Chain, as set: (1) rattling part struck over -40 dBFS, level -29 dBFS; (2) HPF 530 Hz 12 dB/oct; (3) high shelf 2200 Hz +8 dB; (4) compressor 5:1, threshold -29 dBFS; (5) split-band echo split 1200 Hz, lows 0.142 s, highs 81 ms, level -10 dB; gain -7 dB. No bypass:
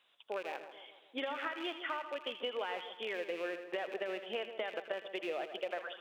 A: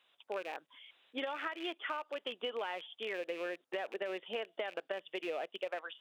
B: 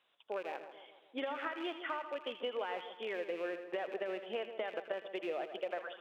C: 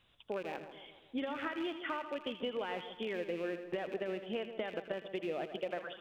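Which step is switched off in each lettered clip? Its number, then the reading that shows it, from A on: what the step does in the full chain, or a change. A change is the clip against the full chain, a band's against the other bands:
5, echo-to-direct -8.5 dB to none; 3, 4 kHz band -4.5 dB; 2, 250 Hz band +8.0 dB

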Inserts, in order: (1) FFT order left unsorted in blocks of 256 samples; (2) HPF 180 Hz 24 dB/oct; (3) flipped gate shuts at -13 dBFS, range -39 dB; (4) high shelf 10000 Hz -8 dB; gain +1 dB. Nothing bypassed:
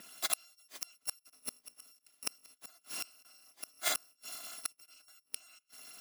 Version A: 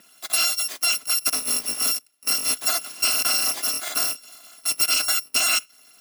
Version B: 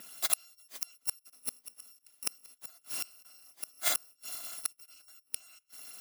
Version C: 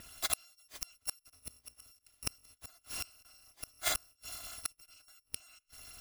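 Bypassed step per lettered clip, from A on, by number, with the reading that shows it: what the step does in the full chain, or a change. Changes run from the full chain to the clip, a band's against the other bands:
3, momentary loudness spread change -17 LU; 4, 8 kHz band +3.5 dB; 2, 250 Hz band +1.5 dB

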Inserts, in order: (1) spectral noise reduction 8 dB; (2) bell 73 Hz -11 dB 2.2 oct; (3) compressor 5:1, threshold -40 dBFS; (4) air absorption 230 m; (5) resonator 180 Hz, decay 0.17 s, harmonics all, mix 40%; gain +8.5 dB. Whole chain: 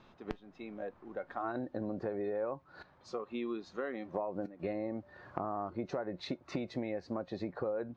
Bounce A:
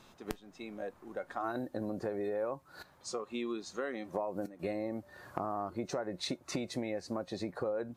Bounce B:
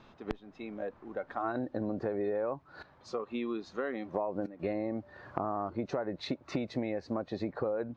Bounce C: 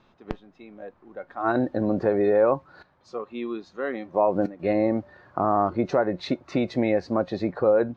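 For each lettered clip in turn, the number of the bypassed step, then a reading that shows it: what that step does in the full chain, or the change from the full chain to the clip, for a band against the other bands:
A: 4, 4 kHz band +6.5 dB; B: 5, loudness change +3.0 LU; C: 3, mean gain reduction 10.0 dB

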